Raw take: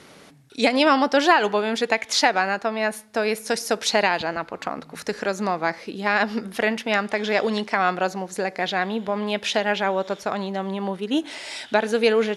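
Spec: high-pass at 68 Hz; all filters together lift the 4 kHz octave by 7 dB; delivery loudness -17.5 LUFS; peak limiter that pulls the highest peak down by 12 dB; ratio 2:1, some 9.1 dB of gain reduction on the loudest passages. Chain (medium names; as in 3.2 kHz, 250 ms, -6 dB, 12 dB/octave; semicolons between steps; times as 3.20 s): high-pass 68 Hz; peaking EQ 4 kHz +8.5 dB; compression 2:1, threshold -28 dBFS; trim +14.5 dB; peak limiter -6 dBFS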